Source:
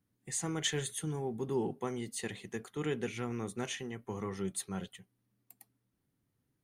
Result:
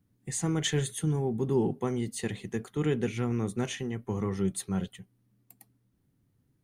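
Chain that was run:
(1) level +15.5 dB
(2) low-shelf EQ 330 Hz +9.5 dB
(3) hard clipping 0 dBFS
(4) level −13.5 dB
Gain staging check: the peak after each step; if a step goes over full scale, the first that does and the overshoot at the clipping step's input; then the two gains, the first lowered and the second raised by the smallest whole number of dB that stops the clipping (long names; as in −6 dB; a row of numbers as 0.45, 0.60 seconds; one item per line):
−3.5, −2.5, −2.5, −16.0 dBFS
no step passes full scale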